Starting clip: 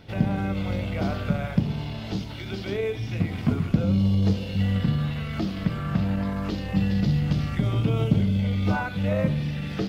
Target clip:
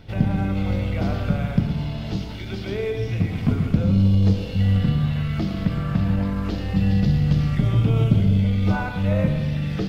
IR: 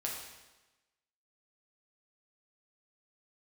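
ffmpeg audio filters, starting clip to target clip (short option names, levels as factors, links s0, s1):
-filter_complex "[0:a]lowshelf=f=79:g=12,asplit=2[s0][s1];[1:a]atrim=start_sample=2205,adelay=113[s2];[s1][s2]afir=irnorm=-1:irlink=0,volume=0.355[s3];[s0][s3]amix=inputs=2:normalize=0"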